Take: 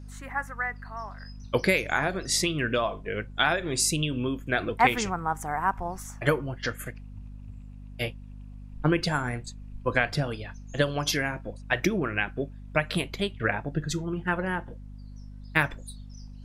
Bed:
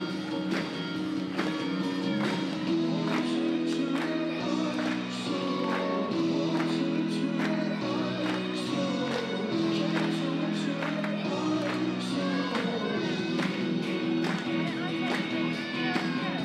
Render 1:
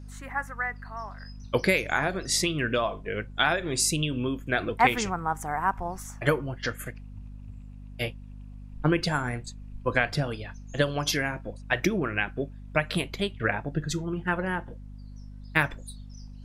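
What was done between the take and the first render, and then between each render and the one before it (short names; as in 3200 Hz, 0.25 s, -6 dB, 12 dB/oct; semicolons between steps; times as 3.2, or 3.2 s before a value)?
nothing audible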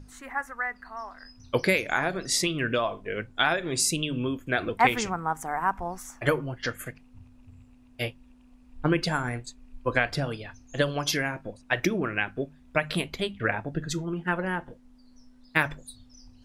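notches 50/100/150/200 Hz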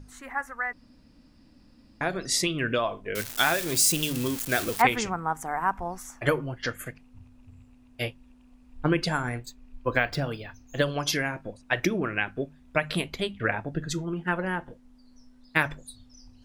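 0.73–2.01 room tone; 3.15–4.82 switching spikes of -20.5 dBFS; 9.39–10.83 decimation joined by straight lines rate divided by 2×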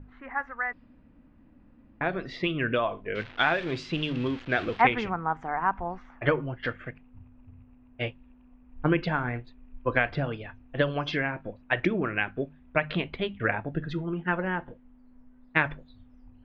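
LPF 3200 Hz 24 dB/oct; low-pass opened by the level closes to 1800 Hz, open at -23.5 dBFS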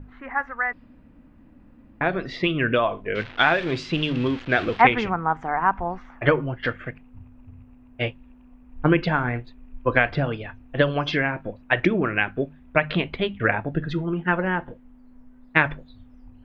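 gain +5.5 dB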